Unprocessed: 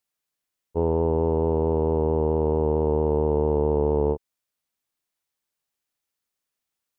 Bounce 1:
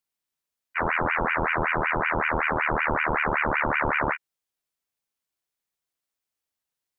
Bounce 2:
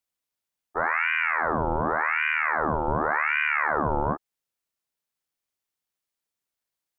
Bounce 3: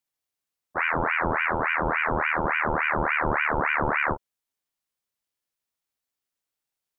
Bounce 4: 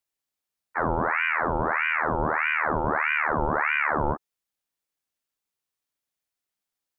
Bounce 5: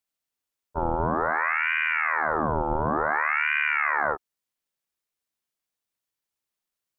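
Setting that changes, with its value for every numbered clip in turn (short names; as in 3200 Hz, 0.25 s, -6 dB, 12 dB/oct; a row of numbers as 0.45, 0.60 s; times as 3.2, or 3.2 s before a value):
ring modulator with a swept carrier, at: 5.3, 0.88, 3.5, 1.6, 0.56 Hz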